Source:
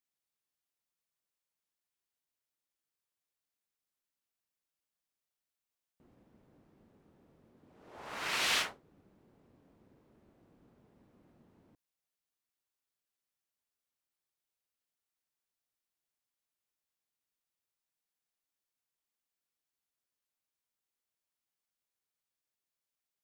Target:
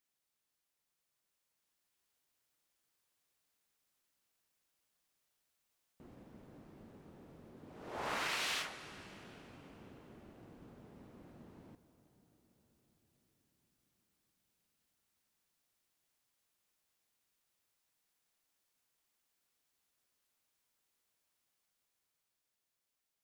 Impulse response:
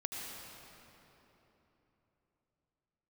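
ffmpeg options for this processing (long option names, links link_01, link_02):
-filter_complex "[0:a]acompressor=threshold=-43dB:ratio=16,asplit=2[link_01][link_02];[1:a]atrim=start_sample=2205,asetrate=25578,aresample=44100[link_03];[link_02][link_03]afir=irnorm=-1:irlink=0,volume=-14.5dB[link_04];[link_01][link_04]amix=inputs=2:normalize=0,dynaudnorm=framelen=240:gausssize=13:maxgain=4.5dB,volume=2.5dB"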